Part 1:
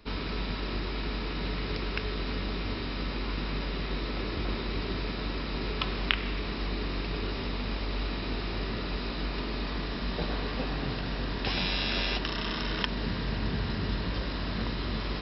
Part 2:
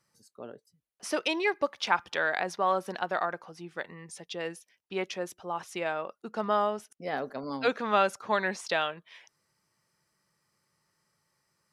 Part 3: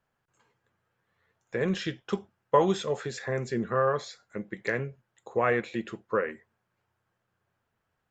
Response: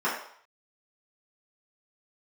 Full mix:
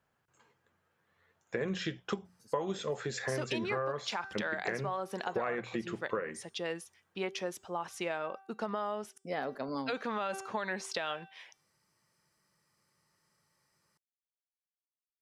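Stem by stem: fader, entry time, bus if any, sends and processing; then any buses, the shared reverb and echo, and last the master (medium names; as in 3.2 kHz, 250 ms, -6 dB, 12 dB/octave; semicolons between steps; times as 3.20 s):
mute
0.0 dB, 2.25 s, bus A, no send, none
+1.5 dB, 0.00 s, no bus, no send, high-pass 41 Hz; hum notches 60/120/180 Hz
bus A: 0.0 dB, de-hum 387.6 Hz, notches 24; peak limiter -19.5 dBFS, peak gain reduction 10 dB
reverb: none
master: compression 6:1, threshold -31 dBFS, peak gain reduction 15.5 dB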